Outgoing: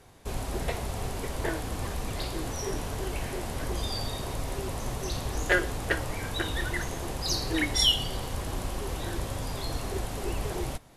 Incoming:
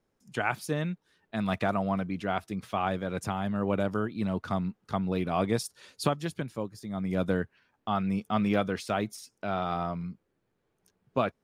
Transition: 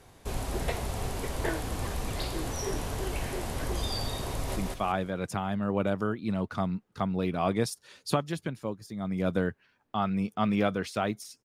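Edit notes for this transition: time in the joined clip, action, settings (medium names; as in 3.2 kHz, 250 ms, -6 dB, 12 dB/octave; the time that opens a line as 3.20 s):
outgoing
4.31–4.56 s: echo throw 180 ms, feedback 30%, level -1.5 dB
4.56 s: go over to incoming from 2.49 s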